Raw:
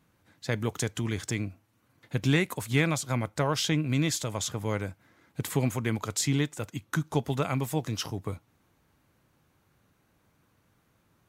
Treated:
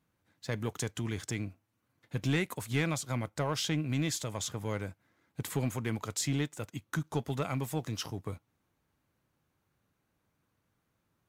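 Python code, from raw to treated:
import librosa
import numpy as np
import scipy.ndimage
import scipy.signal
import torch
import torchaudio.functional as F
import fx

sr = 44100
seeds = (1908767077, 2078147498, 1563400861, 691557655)

y = fx.leveller(x, sr, passes=1)
y = y * librosa.db_to_amplitude(-8.0)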